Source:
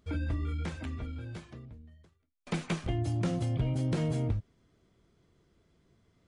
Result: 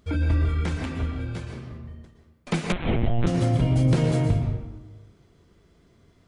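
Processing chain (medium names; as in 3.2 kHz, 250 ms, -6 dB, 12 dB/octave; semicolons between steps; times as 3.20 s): reverberation RT60 1.1 s, pre-delay 109 ms, DRR 2.5 dB; 2.72–3.27 s: LPC vocoder at 8 kHz pitch kept; trim +7.5 dB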